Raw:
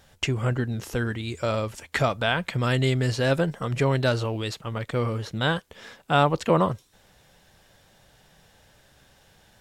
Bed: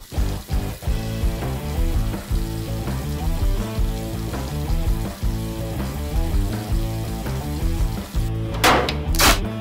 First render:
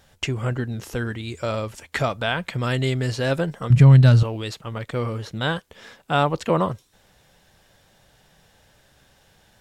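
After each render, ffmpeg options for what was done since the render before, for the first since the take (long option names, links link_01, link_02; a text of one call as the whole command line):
ffmpeg -i in.wav -filter_complex "[0:a]asettb=1/sr,asplit=3[link_01][link_02][link_03];[link_01]atrim=end=3.704[link_04];[link_02]atrim=start=3.7:end=4.23,asetpts=PTS-STARTPTS,afade=type=in:duration=0.004:curve=qsin,afade=type=out:start_time=0.526:duration=0.004:curve=qsin,lowshelf=frequency=250:width_type=q:width=1.5:gain=12.5[link_05];[link_03]atrim=start=4.226[link_06];[link_04][link_05]acrossfade=duration=0.004:curve1=hsin:curve2=qsin[link_07];[link_07][link_06]acrossfade=duration=0.004:curve1=qsin:curve2=hsin" out.wav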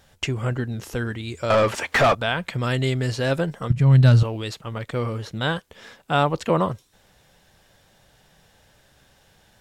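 ffmpeg -i in.wav -filter_complex "[0:a]asettb=1/sr,asplit=3[link_01][link_02][link_03];[link_01]atrim=end=1.504[link_04];[link_02]atrim=start=1.5:end=2.15,asetpts=PTS-STARTPTS,afade=type=in:duration=0.004:curve=qsin,afade=type=out:start_time=0.646:duration=0.004:curve=qsin,asplit=2[link_05][link_06];[link_06]highpass=frequency=720:poles=1,volume=28dB,asoftclip=type=tanh:threshold=-8dB[link_07];[link_05][link_07]amix=inputs=2:normalize=0,lowpass=frequency=1800:poles=1,volume=-6dB[link_08];[link_03]atrim=start=2.146[link_09];[link_04][link_08]acrossfade=duration=0.004:curve1=hsin:curve2=qsin[link_10];[link_10][link_09]acrossfade=duration=0.004:curve1=qsin:curve2=hsin,asplit=2[link_11][link_12];[link_11]atrim=end=3.72,asetpts=PTS-STARTPTS,afade=type=out:start_time=3.716:duration=0.004:curve=hsin:silence=0.158489[link_13];[link_12]atrim=start=3.72,asetpts=PTS-STARTPTS,afade=type=in:duration=0.46:curve=qsin:silence=0.158489[link_14];[link_13][link_14]concat=n=2:v=0:a=1" out.wav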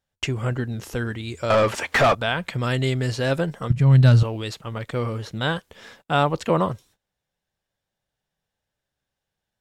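ffmpeg -i in.wav -af "agate=range=-26dB:threshold=-50dB:ratio=16:detection=peak" out.wav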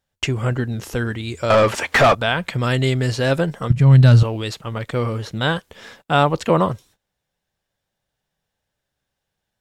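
ffmpeg -i in.wav -af "volume=4dB,alimiter=limit=-2dB:level=0:latency=1" out.wav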